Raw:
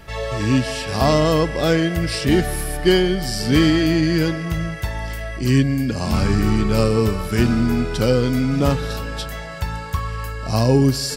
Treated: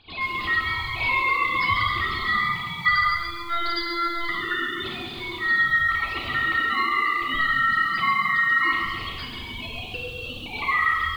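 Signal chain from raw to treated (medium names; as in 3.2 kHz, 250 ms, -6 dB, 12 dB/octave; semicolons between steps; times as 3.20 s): formants replaced by sine waves; dynamic bell 910 Hz, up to -4 dB, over -31 dBFS, Q 1.2; ring modulator 1.6 kHz; peaking EQ 600 Hz -9 dB 1.9 oct; 3.03–4.29 s: robot voice 343 Hz; reverberation RT60 0.90 s, pre-delay 3 ms, DRR -2 dB; compression 3:1, threshold -20 dBFS, peak gain reduction 9 dB; bit-crushed delay 135 ms, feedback 55%, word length 8-bit, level -7.5 dB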